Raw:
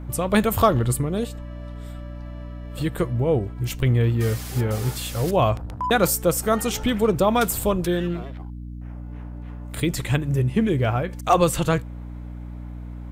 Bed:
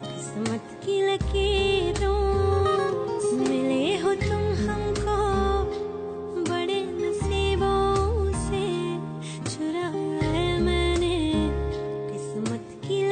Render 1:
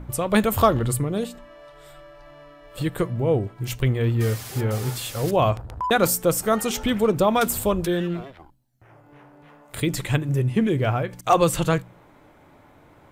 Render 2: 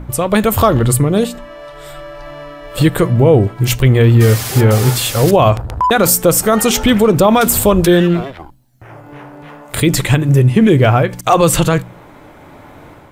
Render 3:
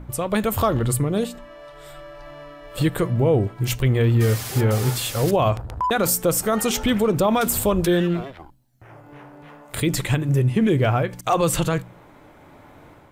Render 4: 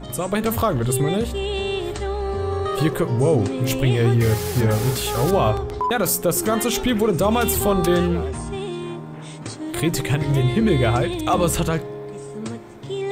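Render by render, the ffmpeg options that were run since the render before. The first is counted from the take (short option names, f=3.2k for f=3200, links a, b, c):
-af "bandreject=f=60:t=h:w=4,bandreject=f=120:t=h:w=4,bandreject=f=180:t=h:w=4,bandreject=f=240:t=h:w=4,bandreject=f=300:t=h:w=4"
-af "dynaudnorm=f=560:g=3:m=7.5dB,alimiter=level_in=8.5dB:limit=-1dB:release=50:level=0:latency=1"
-af "volume=-9dB"
-filter_complex "[1:a]volume=-2dB[a];[0:a][a]amix=inputs=2:normalize=0"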